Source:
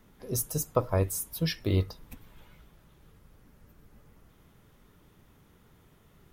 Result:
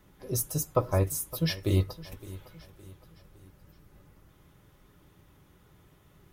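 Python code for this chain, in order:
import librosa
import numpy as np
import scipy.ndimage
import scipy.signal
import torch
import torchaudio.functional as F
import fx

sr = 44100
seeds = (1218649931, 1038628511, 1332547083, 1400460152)

y = fx.notch_comb(x, sr, f0_hz=230.0)
y = fx.echo_feedback(y, sr, ms=563, feedback_pct=44, wet_db=-18.0)
y = F.gain(torch.from_numpy(y), 1.5).numpy()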